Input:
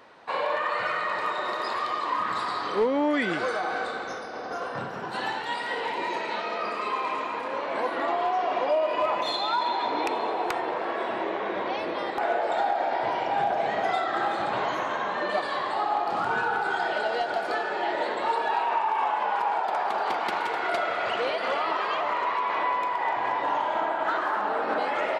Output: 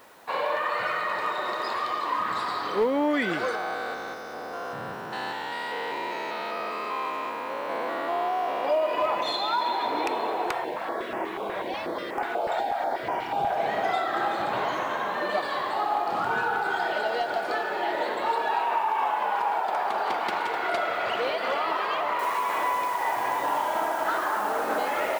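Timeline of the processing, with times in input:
3.55–8.65 stepped spectrum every 0.2 s
10.52–13.57 stepped notch 8.2 Hz 270–3900 Hz
22.19 noise floor step -61 dB -46 dB

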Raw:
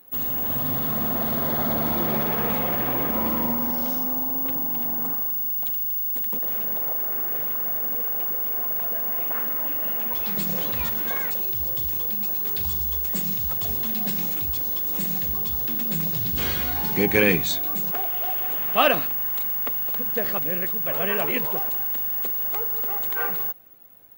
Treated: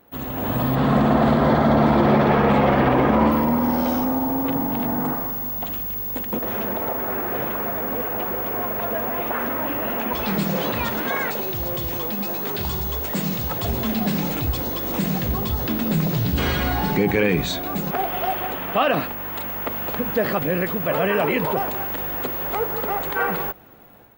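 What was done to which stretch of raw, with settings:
0.75–3.32 air absorption 58 m
10.44–13.64 low shelf 98 Hz -12 dB
whole clip: AGC gain up to 8 dB; limiter -13 dBFS; LPF 1900 Hz 6 dB/oct; gain +6 dB

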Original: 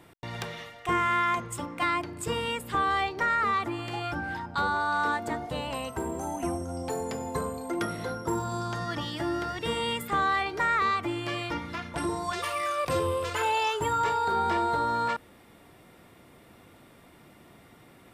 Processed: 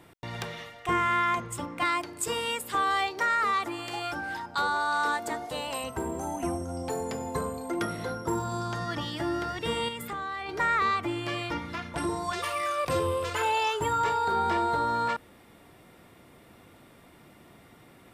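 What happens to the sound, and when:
1.85–5.84 tone controls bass -10 dB, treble +7 dB
9.88–10.49 compressor, threshold -32 dBFS

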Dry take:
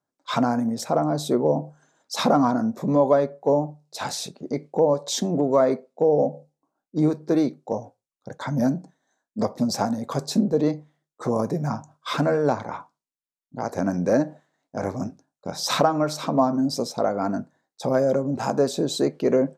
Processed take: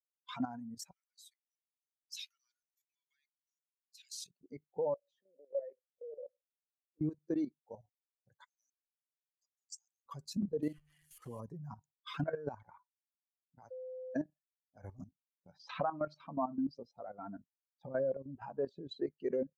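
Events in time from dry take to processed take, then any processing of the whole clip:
0.91–4.2 inverse Chebyshev high-pass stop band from 680 Hz, stop band 60 dB
4.94–7.01 vowel filter e
8.44–10.06 band-pass 7300 Hz, Q 3
10.62–11.4 delta modulation 64 kbps, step -32.5 dBFS
13.71–14.15 bleep 512 Hz -19.5 dBFS
15.53–19.07 LPF 3100 Hz
whole clip: per-bin expansion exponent 2; dynamic EQ 2800 Hz, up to +5 dB, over -54 dBFS, Q 3.5; level quantiser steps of 13 dB; gain -6 dB

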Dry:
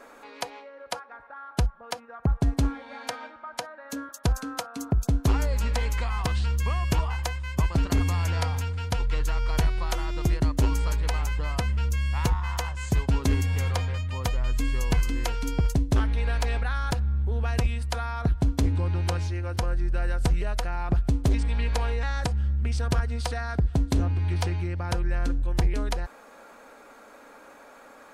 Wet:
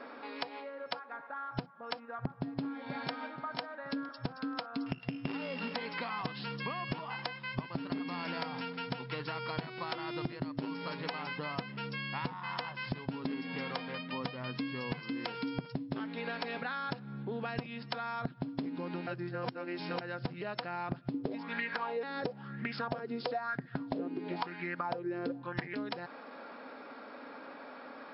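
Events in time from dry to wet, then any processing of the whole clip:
2.38–3.27 echo throw 0.48 s, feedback 40%, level -16 dB
4.86–5.74 sample sorter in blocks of 16 samples
19.07–20.01 reverse
21.14–25.75 LFO bell 1 Hz 350–1900 Hz +17 dB
whole clip: FFT band-pass 120–5400 Hz; bell 260 Hz +7 dB 0.24 oct; compressor 6:1, threshold -35 dBFS; gain +1 dB

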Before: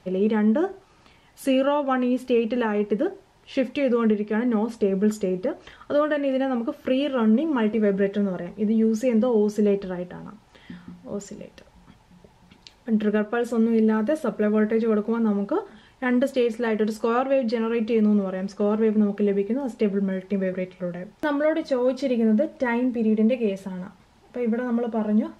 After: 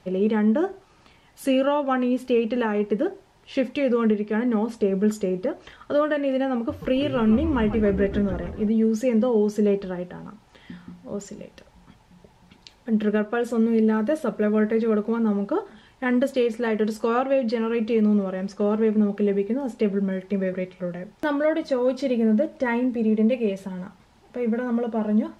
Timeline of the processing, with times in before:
6.55–8.7 frequency-shifting echo 0.142 s, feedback 63%, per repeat -140 Hz, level -11.5 dB

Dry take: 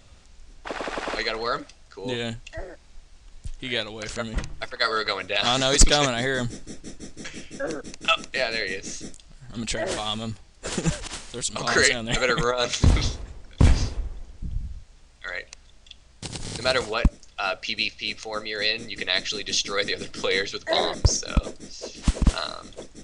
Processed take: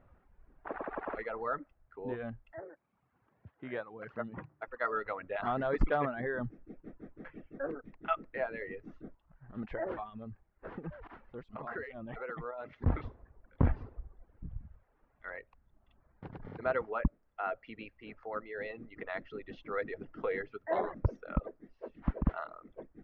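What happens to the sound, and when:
2.56–4.68 HPF 100 Hz 24 dB/oct
10.03–12.86 compressor 2.5:1, threshold -31 dBFS
whole clip: reverb removal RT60 0.79 s; LPF 1600 Hz 24 dB/oct; low shelf 100 Hz -7 dB; gain -6.5 dB

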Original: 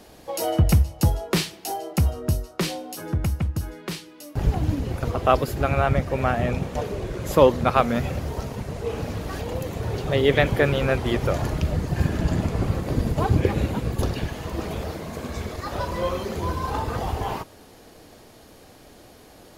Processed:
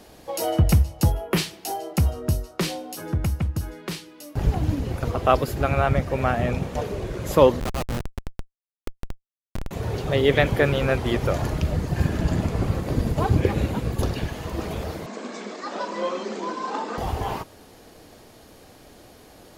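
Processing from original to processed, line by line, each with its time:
1.12–1.38 spectral gain 3300–10000 Hz -11 dB
7.6–9.71 Schmitt trigger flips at -19 dBFS
15.06–16.98 Chebyshev band-pass 200–8000 Hz, order 5

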